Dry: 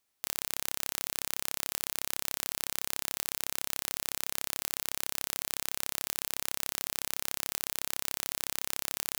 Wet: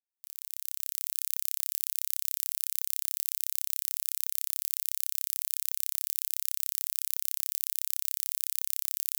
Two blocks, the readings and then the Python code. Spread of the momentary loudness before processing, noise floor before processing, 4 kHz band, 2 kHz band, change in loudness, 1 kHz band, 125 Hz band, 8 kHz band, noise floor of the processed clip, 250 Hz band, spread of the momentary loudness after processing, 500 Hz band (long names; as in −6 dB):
0 LU, −79 dBFS, −5.0 dB, −11.0 dB, +3.0 dB, below −15 dB, below −25 dB, +0.5 dB, −78 dBFS, below −25 dB, 1 LU, below −20 dB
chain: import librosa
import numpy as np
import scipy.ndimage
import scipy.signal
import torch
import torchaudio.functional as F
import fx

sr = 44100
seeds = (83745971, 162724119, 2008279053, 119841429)

y = fx.fade_in_head(x, sr, length_s=1.22)
y = scipy.signal.sosfilt(scipy.signal.butter(2, 61.0, 'highpass', fs=sr, output='sos'), y)
y = F.preemphasis(torch.from_numpy(y), 0.97).numpy()